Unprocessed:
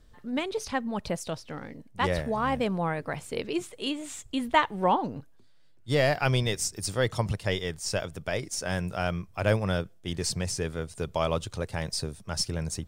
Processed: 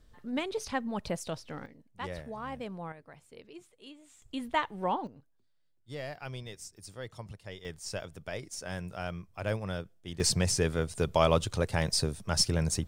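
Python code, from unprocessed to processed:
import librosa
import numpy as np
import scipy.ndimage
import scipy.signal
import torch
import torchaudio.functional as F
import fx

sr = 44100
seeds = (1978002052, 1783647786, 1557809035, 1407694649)

y = fx.gain(x, sr, db=fx.steps((0.0, -3.0), (1.66, -12.0), (2.92, -19.0), (4.22, -7.0), (5.07, -16.0), (7.65, -8.0), (10.2, 3.0)))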